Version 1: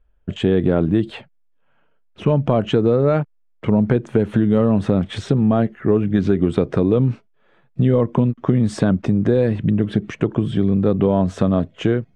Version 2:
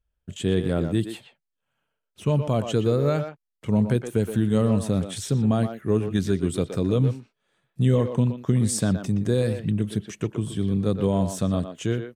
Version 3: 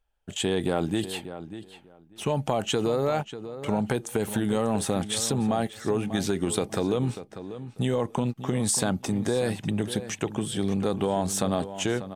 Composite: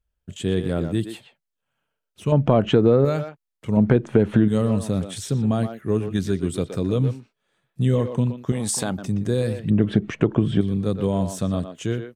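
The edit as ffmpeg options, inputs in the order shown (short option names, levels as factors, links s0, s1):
-filter_complex "[0:a]asplit=3[s0][s1][s2];[1:a]asplit=5[s3][s4][s5][s6][s7];[s3]atrim=end=2.322[s8];[s0]atrim=start=2.318:end=3.052[s9];[s4]atrim=start=3.048:end=3.772[s10];[s1]atrim=start=3.768:end=4.482[s11];[s5]atrim=start=4.478:end=8.522[s12];[2:a]atrim=start=8.518:end=8.982[s13];[s6]atrim=start=8.978:end=9.702[s14];[s2]atrim=start=9.698:end=10.612[s15];[s7]atrim=start=10.608[s16];[s8][s9]acrossfade=d=0.004:c1=hsin:c2=hsin[s17];[s17][s10]acrossfade=d=0.004:c1=hsin:c2=hsin[s18];[s18][s11]acrossfade=d=0.004:c1=hsin:c2=hsin[s19];[s19][s12]acrossfade=d=0.004:c1=hsin:c2=hsin[s20];[s20][s13]acrossfade=d=0.004:c1=hsin:c2=hsin[s21];[s21][s14]acrossfade=d=0.004:c1=hsin:c2=hsin[s22];[s22][s15]acrossfade=d=0.004:c1=hsin:c2=hsin[s23];[s23][s16]acrossfade=d=0.004:c1=hsin:c2=hsin"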